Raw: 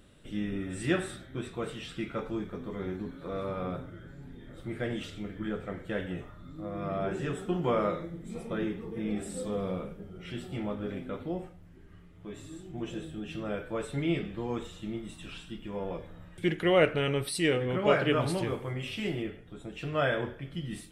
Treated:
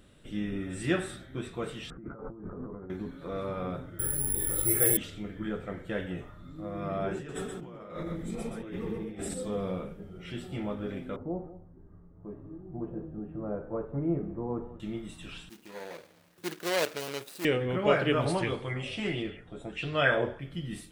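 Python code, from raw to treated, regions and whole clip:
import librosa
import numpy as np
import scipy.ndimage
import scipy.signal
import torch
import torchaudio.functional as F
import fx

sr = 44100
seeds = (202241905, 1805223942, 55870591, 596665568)

y = fx.chain(x, sr, fx.over_compress(threshold_db=-42.0, ratio=-1.0),
    fx.steep_lowpass(hz=1400.0, slope=36), at=(1.9, 2.9))
y = fx.chain(y, sr, fx.comb(ms=2.3, depth=0.75),
    fx.resample_bad(factor=4, down='filtered', up='zero_stuff'),
    fx.env_flatten(amount_pct=50), at=(3.99, 4.97))
y = fx.chain(y, sr, fx.over_compress(threshold_db=-40.0, ratio=-1.0),
    fx.echo_single(ms=125, db=-4.5), at=(7.16, 9.34))
y = fx.chain(y, sr, fx.lowpass(hz=1100.0, slope=24),
    fx.echo_single(ms=191, db=-15.5), at=(11.16, 14.8))
y = fx.chain(y, sr, fx.median_filter(points=41),
    fx.highpass(hz=210.0, slope=6),
    fx.tilt_eq(slope=4.0), at=(15.49, 17.45))
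y = fx.chain(y, sr, fx.brickwall_lowpass(high_hz=11000.0),
    fx.bell_lfo(hz=1.5, low_hz=550.0, high_hz=4300.0, db=11), at=(18.25, 20.39))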